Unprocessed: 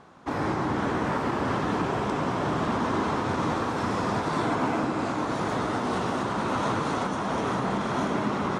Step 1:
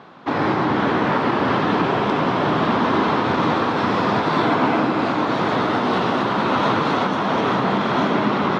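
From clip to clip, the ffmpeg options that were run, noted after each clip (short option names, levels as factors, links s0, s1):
-af "highpass=130,highshelf=f=5600:t=q:w=1.5:g=-13.5,volume=2.51"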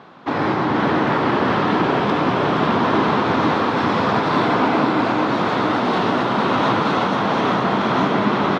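-af "aecho=1:1:470:0.531"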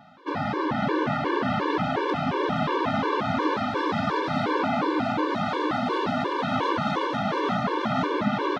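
-af "afftfilt=real='re*gt(sin(2*PI*2.8*pts/sr)*(1-2*mod(floor(b*sr/1024/300),2)),0)':imag='im*gt(sin(2*PI*2.8*pts/sr)*(1-2*mod(floor(b*sr/1024/300),2)),0)':win_size=1024:overlap=0.75,volume=0.631"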